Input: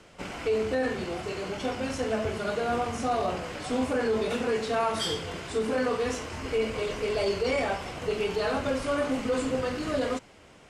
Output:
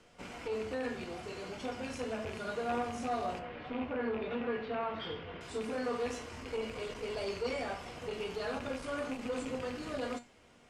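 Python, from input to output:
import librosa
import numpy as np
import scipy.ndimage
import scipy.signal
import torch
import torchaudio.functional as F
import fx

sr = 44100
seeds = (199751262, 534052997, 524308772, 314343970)

y = fx.rattle_buzz(x, sr, strikes_db=-31.0, level_db=-24.0)
y = fx.lowpass(y, sr, hz=3100.0, slope=24, at=(3.39, 5.41))
y = fx.comb_fb(y, sr, f0_hz=240.0, decay_s=0.26, harmonics='all', damping=0.0, mix_pct=70)
y = fx.transformer_sat(y, sr, knee_hz=570.0)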